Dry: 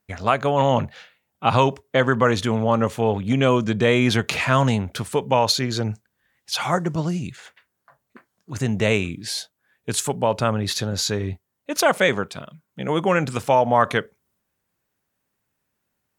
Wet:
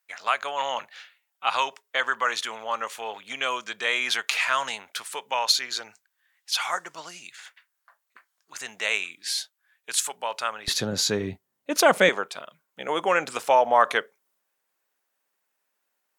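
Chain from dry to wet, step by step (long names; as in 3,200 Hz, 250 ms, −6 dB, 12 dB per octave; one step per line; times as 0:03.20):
high-pass filter 1,200 Hz 12 dB per octave, from 0:10.68 170 Hz, from 0:12.09 540 Hz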